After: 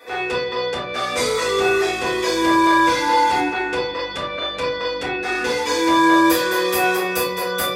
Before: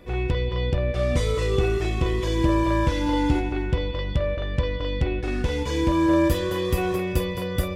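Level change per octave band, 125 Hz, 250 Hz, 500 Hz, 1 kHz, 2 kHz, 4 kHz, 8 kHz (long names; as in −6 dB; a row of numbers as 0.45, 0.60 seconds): −14.5, +2.5, +4.5, +12.5, +12.5, +10.5, +12.0 decibels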